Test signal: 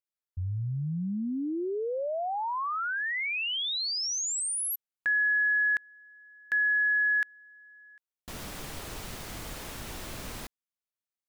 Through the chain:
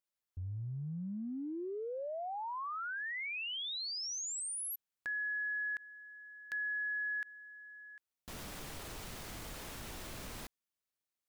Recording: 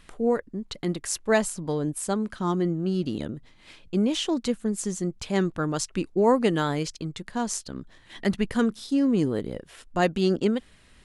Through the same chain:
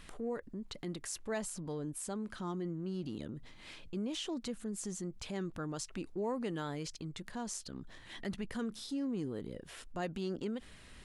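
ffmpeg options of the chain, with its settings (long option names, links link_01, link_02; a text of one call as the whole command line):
ffmpeg -i in.wav -af "acompressor=threshold=-48dB:ratio=2:attack=0.74:release=48:knee=1:detection=peak,volume=1dB" out.wav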